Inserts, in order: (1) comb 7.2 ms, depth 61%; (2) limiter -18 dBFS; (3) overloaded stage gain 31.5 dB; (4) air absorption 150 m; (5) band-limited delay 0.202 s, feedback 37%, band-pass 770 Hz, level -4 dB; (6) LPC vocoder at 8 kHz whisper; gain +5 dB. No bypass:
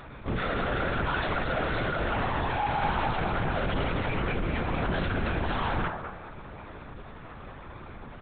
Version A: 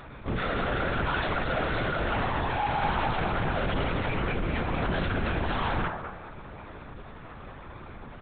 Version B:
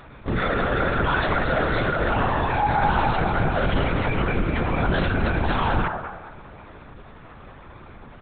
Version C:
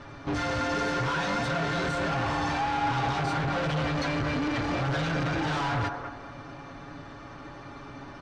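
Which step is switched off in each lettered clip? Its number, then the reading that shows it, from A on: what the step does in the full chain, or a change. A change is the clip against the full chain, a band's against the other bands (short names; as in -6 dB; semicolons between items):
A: 2, mean gain reduction 2.0 dB; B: 3, distortion -7 dB; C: 6, 4 kHz band +2.0 dB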